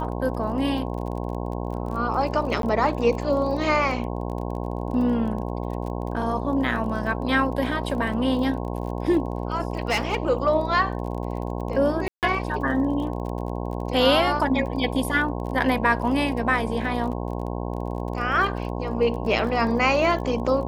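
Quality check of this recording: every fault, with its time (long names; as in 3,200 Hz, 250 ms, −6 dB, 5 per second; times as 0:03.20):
mains buzz 60 Hz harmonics 18 −29 dBFS
surface crackle 29 per second −33 dBFS
0:02.62–0:02.63: drop-out 12 ms
0:09.88–0:10.27: clipping −17 dBFS
0:12.08–0:12.23: drop-out 148 ms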